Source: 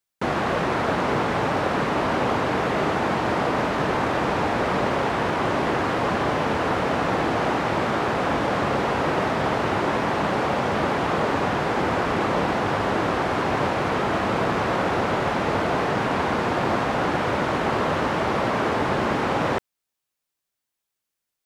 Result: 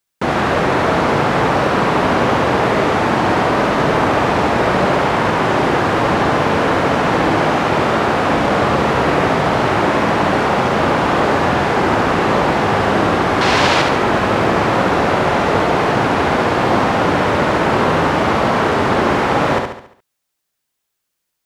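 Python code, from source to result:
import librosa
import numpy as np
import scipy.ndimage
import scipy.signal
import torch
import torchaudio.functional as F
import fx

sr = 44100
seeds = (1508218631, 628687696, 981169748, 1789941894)

p1 = fx.peak_eq(x, sr, hz=4600.0, db=12.5, octaves=2.3, at=(13.41, 13.82))
p2 = p1 + fx.echo_feedback(p1, sr, ms=70, feedback_pct=46, wet_db=-4.5, dry=0)
y = F.gain(torch.from_numpy(p2), 6.5).numpy()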